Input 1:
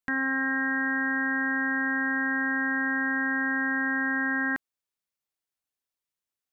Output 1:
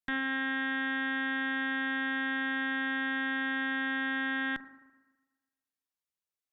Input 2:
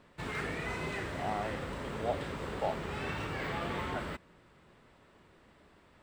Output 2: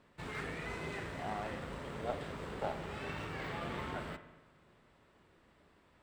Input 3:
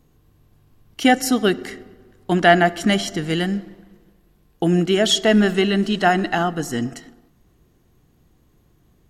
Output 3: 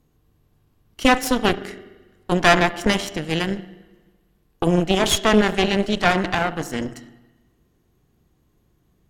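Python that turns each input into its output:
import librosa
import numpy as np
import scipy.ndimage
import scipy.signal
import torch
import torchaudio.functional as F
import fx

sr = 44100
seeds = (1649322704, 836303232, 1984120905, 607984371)

y = fx.rev_spring(x, sr, rt60_s=1.2, pass_ms=(37, 42), chirp_ms=70, drr_db=10.5)
y = fx.cheby_harmonics(y, sr, harmonics=(3, 4, 7, 8), levels_db=(-22, -11, -40, -23), full_scale_db=-0.5)
y = y * 10.0 ** (-2.0 / 20.0)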